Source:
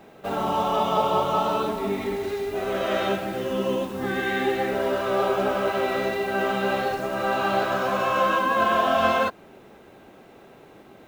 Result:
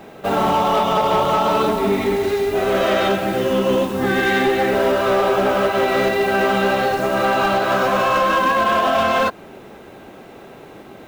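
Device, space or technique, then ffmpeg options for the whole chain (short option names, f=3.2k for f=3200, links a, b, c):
limiter into clipper: -af "alimiter=limit=-15.5dB:level=0:latency=1:release=157,asoftclip=type=hard:threshold=-21dB,volume=9dB"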